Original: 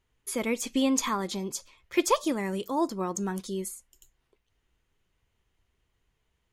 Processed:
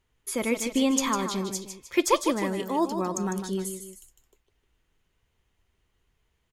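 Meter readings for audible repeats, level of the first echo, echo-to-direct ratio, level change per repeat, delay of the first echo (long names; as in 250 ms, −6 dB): 2, −8.0 dB, −7.0 dB, −7.0 dB, 153 ms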